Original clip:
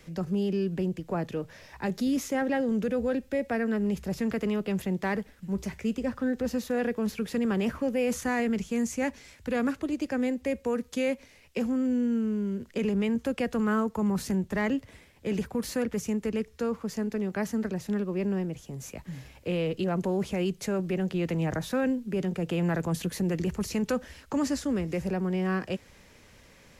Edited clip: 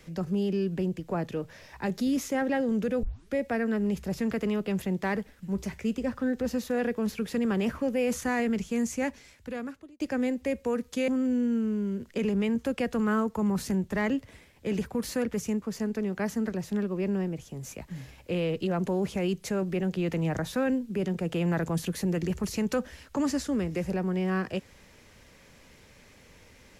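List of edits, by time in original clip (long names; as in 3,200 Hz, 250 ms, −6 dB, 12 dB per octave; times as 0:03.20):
0:03.03: tape start 0.31 s
0:08.97–0:10.00: fade out
0:11.08–0:11.68: remove
0:16.22–0:16.79: remove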